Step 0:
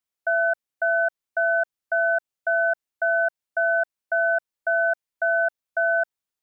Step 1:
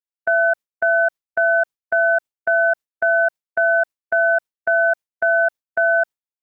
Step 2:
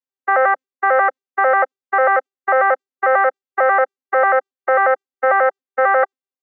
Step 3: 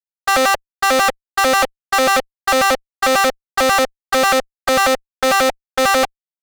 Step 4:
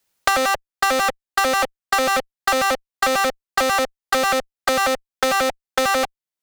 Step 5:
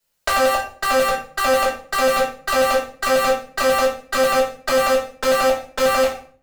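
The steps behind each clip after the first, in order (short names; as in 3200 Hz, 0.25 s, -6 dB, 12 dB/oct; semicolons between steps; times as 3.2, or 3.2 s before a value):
gate with hold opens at -15 dBFS; gain +5 dB
arpeggiated vocoder bare fifth, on C4, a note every 90 ms; gain +2 dB
fuzz box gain 38 dB, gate -44 dBFS
three-band squash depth 100%; gain -5 dB
reverb RT60 0.45 s, pre-delay 3 ms, DRR -7.5 dB; gain -8 dB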